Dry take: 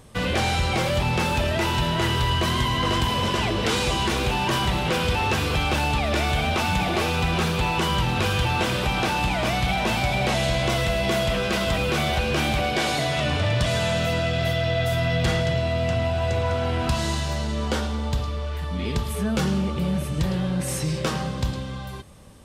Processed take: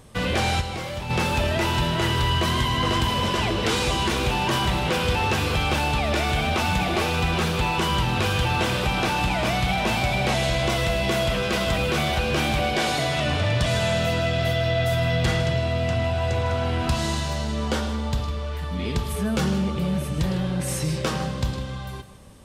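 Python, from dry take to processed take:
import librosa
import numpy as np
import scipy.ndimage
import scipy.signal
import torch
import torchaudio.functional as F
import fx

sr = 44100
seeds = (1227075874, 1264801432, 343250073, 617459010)

p1 = fx.comb_fb(x, sr, f0_hz=100.0, decay_s=0.51, harmonics='all', damping=0.0, mix_pct=70, at=(0.6, 1.09), fade=0.02)
y = p1 + fx.echo_single(p1, sr, ms=155, db=-14.0, dry=0)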